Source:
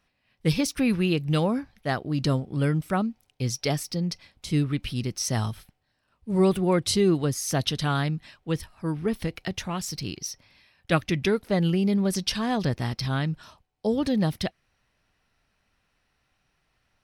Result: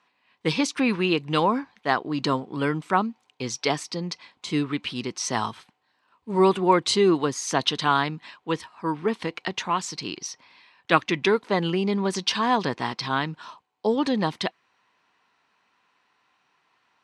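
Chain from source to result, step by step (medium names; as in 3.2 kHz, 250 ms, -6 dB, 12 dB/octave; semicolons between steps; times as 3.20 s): cabinet simulation 300–7300 Hz, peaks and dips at 590 Hz -6 dB, 1 kHz +10 dB, 5.4 kHz -7 dB; trim +5 dB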